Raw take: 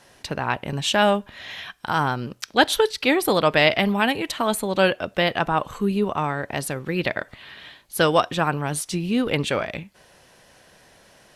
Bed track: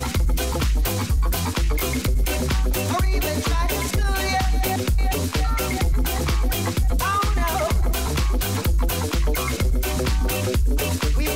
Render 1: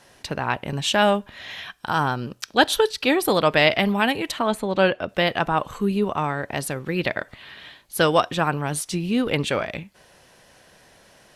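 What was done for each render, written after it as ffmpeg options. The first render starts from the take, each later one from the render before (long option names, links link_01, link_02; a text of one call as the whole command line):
ffmpeg -i in.wav -filter_complex "[0:a]asettb=1/sr,asplit=3[link_01][link_02][link_03];[link_01]atrim=end=1.784[link_04];[link_02]atrim=start=1.78:end=3.28,asetpts=PTS-STARTPTS,afade=type=in:duration=0.004:curve=qsin,afade=type=out:start_time=1.496:duration=0.004:curve=qsin,bandreject=frequency=2100:width=11[link_05];[link_03]atrim=start=3.276[link_06];[link_04][link_05]acrossfade=duration=0.004:curve1=hsin:curve2=qsin[link_07];[link_07][link_06]acrossfade=duration=0.004:curve1=qsin:curve2=hsin,asettb=1/sr,asplit=3[link_08][link_09][link_10];[link_08]atrim=end=4.394[link_11];[link_09]atrim=start=4.39:end=5.09,asetpts=PTS-STARTPTS,afade=type=in:duration=0.004:curve=qsin,afade=type=out:start_time=0.696:duration=0.004:curve=qsin,aemphasis=mode=reproduction:type=50fm[link_12];[link_10]atrim=start=5.086[link_13];[link_11][link_12]acrossfade=duration=0.004:curve1=hsin:curve2=qsin[link_14];[link_14][link_13]acrossfade=duration=0.004:curve1=qsin:curve2=hsin" out.wav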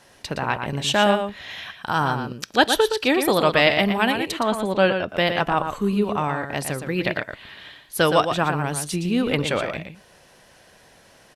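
ffmpeg -i in.wav -filter_complex "[0:a]asplit=2[link_01][link_02];[link_02]adelay=116.6,volume=-7dB,highshelf=frequency=4000:gain=-2.62[link_03];[link_01][link_03]amix=inputs=2:normalize=0" out.wav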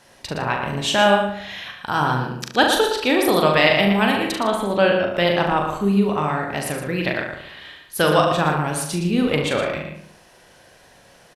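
ffmpeg -i in.wav -filter_complex "[0:a]asplit=2[link_01][link_02];[link_02]adelay=40,volume=-5.5dB[link_03];[link_01][link_03]amix=inputs=2:normalize=0,asplit=2[link_04][link_05];[link_05]adelay=71,lowpass=frequency=2700:poles=1,volume=-6.5dB,asplit=2[link_06][link_07];[link_07]adelay=71,lowpass=frequency=2700:poles=1,volume=0.52,asplit=2[link_08][link_09];[link_09]adelay=71,lowpass=frequency=2700:poles=1,volume=0.52,asplit=2[link_10][link_11];[link_11]adelay=71,lowpass=frequency=2700:poles=1,volume=0.52,asplit=2[link_12][link_13];[link_13]adelay=71,lowpass=frequency=2700:poles=1,volume=0.52,asplit=2[link_14][link_15];[link_15]adelay=71,lowpass=frequency=2700:poles=1,volume=0.52[link_16];[link_06][link_08][link_10][link_12][link_14][link_16]amix=inputs=6:normalize=0[link_17];[link_04][link_17]amix=inputs=2:normalize=0" out.wav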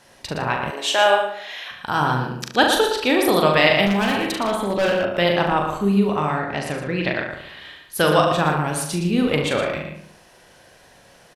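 ffmpeg -i in.wav -filter_complex "[0:a]asettb=1/sr,asplit=3[link_01][link_02][link_03];[link_01]atrim=end=0.704[link_04];[link_02]atrim=start=0.7:end=1.71,asetpts=PTS-STARTPTS,afade=type=in:duration=0.004:curve=qsin,afade=type=out:start_time=1.006:duration=0.004:curve=qsin,highpass=frequency=360:width=0.5412,highpass=frequency=360:width=1.3066[link_05];[link_03]atrim=start=1.706[link_06];[link_04][link_05]acrossfade=duration=0.004:curve1=hsin:curve2=qsin[link_07];[link_07][link_06]acrossfade=duration=0.004:curve1=qsin:curve2=hsin,asettb=1/sr,asplit=3[link_08][link_09][link_10];[link_08]atrim=end=3.864[link_11];[link_09]atrim=start=3.86:end=5.05,asetpts=PTS-STARTPTS,afade=type=in:duration=0.004:curve=qsin,afade=type=out:start_time=1.186:duration=0.004:curve=qsin,asoftclip=type=hard:threshold=-16dB[link_12];[link_10]atrim=start=5.046[link_13];[link_11][link_12]acrossfade=duration=0.004:curve1=hsin:curve2=qsin[link_14];[link_14][link_13]acrossfade=duration=0.004:curve1=qsin:curve2=hsin,asettb=1/sr,asplit=3[link_15][link_16][link_17];[link_15]atrim=end=6.394[link_18];[link_16]atrim=start=6.39:end=7.31,asetpts=PTS-STARTPTS,afade=type=in:duration=0.004:curve=qsin,afade=type=out:start_time=0.916:duration=0.004:curve=qsin,lowpass=6100[link_19];[link_17]atrim=start=7.306[link_20];[link_18][link_19]acrossfade=duration=0.004:curve1=hsin:curve2=qsin[link_21];[link_21][link_20]acrossfade=duration=0.004:curve1=qsin:curve2=hsin" out.wav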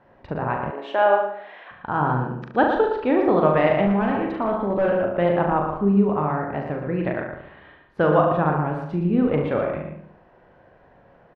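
ffmpeg -i in.wav -af "lowpass=1400,aemphasis=mode=reproduction:type=75kf" out.wav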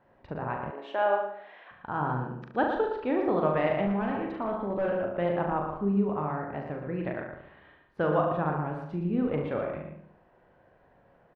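ffmpeg -i in.wav -af "volume=-8dB" out.wav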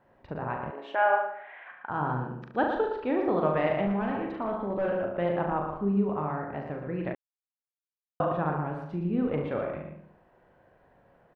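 ffmpeg -i in.wav -filter_complex "[0:a]asettb=1/sr,asplit=3[link_01][link_02][link_03];[link_01]atrim=end=0.954[link_04];[link_02]atrim=start=0.95:end=1.9,asetpts=PTS-STARTPTS,afade=type=in:duration=0.004:curve=qsin,afade=type=out:start_time=0.946:duration=0.004:curve=qsin,highpass=380,equalizer=frequency=470:width_type=q:width=4:gain=-4,equalizer=frequency=800:width_type=q:width=4:gain=4,equalizer=frequency=1500:width_type=q:width=4:gain=7,equalizer=frequency=2200:width_type=q:width=4:gain=8,lowpass=frequency=3000:width=0.5412,lowpass=frequency=3000:width=1.3066[link_05];[link_03]atrim=start=1.896[link_06];[link_04][link_05]acrossfade=duration=0.004:curve1=hsin:curve2=qsin[link_07];[link_07][link_06]acrossfade=duration=0.004:curve1=qsin:curve2=hsin,asplit=3[link_08][link_09][link_10];[link_08]atrim=end=7.15,asetpts=PTS-STARTPTS,afade=type=out:start_time=7.146:duration=0.004:curve=hsin[link_11];[link_09]atrim=start=7.15:end=8.2,asetpts=PTS-STARTPTS,volume=0[link_12];[link_10]atrim=start=8.2,asetpts=PTS-STARTPTS,afade=type=in:duration=0.004:curve=hsin[link_13];[link_11][link_12][link_13]concat=n=3:v=0:a=1" out.wav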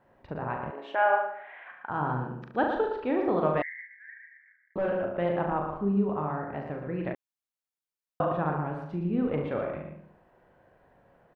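ffmpeg -i in.wav -filter_complex "[0:a]asettb=1/sr,asplit=3[link_01][link_02][link_03];[link_01]atrim=end=3.624[link_04];[link_02]atrim=start=3.62:end=4.76,asetpts=PTS-STARTPTS,afade=type=in:duration=0.004:curve=qsin,afade=type=out:start_time=1.136:duration=0.004:curve=qsin,asuperpass=centerf=1900:order=12:qfactor=3.2[link_05];[link_03]atrim=start=4.756[link_06];[link_04][link_05]acrossfade=duration=0.004:curve1=hsin:curve2=qsin[link_07];[link_07][link_06]acrossfade=duration=0.004:curve1=qsin:curve2=hsin,asettb=1/sr,asplit=3[link_08][link_09][link_10];[link_08]atrim=end=5.884[link_11];[link_09]atrim=start=5.88:end=6.47,asetpts=PTS-STARTPTS,afade=type=in:duration=0.004:curve=qsin,afade=type=out:start_time=0.586:duration=0.004:curve=qsin,equalizer=frequency=2200:width_type=o:width=0.28:gain=-6[link_12];[link_10]atrim=start=6.466[link_13];[link_11][link_12]acrossfade=duration=0.004:curve1=hsin:curve2=qsin[link_14];[link_14][link_13]acrossfade=duration=0.004:curve1=qsin:curve2=hsin" out.wav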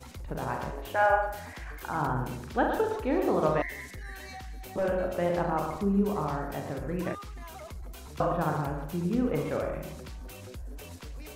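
ffmpeg -i in.wav -i bed.wav -filter_complex "[1:a]volume=-21.5dB[link_01];[0:a][link_01]amix=inputs=2:normalize=0" out.wav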